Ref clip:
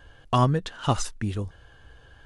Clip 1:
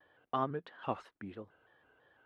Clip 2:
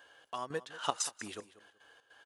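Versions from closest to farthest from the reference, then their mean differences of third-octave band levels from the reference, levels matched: 1, 2; 5.0, 8.0 dB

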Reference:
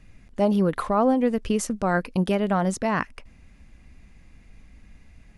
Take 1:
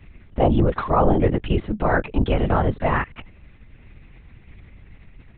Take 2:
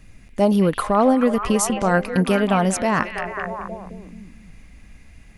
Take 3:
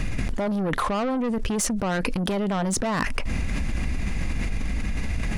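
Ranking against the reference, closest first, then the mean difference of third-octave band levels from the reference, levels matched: 2, 1, 3; 4.5, 6.5, 12.5 dB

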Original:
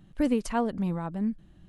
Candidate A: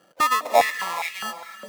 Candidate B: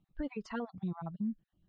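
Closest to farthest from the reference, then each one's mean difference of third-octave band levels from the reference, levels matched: B, A; 6.0, 17.0 dB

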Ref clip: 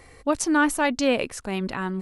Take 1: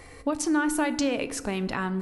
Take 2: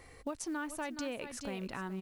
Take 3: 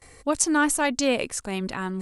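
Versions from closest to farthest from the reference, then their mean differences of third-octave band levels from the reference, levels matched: 3, 1, 2; 1.5, 4.5, 6.5 dB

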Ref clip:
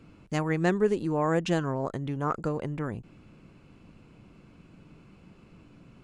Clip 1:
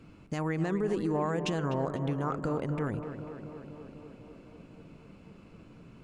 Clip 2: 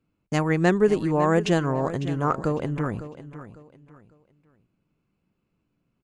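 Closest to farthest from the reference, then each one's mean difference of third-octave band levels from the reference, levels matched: 1, 2; 5.0, 6.5 dB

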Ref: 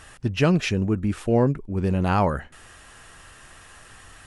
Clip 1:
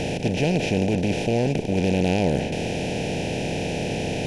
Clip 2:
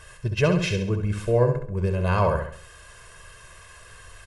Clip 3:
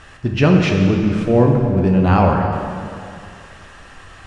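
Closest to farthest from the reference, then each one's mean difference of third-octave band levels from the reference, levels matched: 2, 3, 1; 4.0, 7.0, 13.5 dB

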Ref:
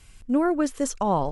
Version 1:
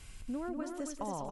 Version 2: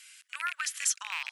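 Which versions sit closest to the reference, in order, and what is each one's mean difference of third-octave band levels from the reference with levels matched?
1, 2; 8.0, 17.5 dB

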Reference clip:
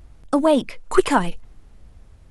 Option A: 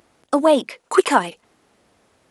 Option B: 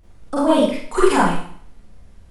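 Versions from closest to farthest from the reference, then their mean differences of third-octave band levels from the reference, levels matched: A, B; 3.0, 8.5 dB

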